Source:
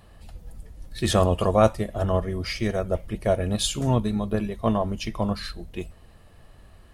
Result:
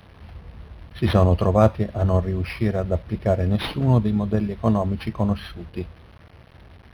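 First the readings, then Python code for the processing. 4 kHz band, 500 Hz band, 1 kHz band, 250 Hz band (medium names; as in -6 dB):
-4.5 dB, +1.0 dB, 0.0 dB, +4.0 dB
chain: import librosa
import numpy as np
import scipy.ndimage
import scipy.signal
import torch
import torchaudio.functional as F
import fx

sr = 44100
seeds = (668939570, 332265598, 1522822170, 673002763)

y = scipy.signal.sosfilt(scipy.signal.butter(4, 58.0, 'highpass', fs=sr, output='sos'), x)
y = fx.low_shelf(y, sr, hz=210.0, db=8.0)
y = fx.quant_dither(y, sr, seeds[0], bits=8, dither='none')
y = np.interp(np.arange(len(y)), np.arange(len(y))[::6], y[::6])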